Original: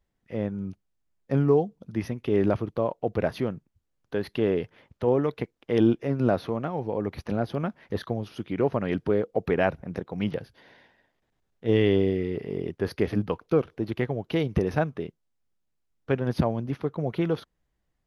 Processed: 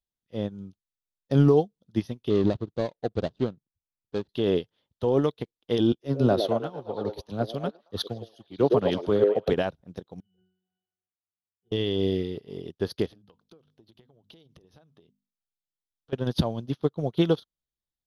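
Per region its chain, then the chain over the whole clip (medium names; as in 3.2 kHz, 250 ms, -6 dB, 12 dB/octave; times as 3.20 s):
2.30–4.29 s: median filter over 41 samples + distance through air 120 m
5.92–9.53 s: repeats whose band climbs or falls 112 ms, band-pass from 470 Hz, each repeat 0.7 oct, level 0 dB + three bands expanded up and down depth 70%
10.20–11.72 s: pitch-class resonator F#, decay 0.66 s + compressor with a negative ratio -51 dBFS
13.06–16.13 s: hum notches 50/100/150/200/250 Hz + compression 12:1, threshold -35 dBFS
whole clip: resonant high shelf 2.8 kHz +7 dB, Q 3; peak limiter -16 dBFS; upward expansion 2.5:1, over -40 dBFS; trim +7 dB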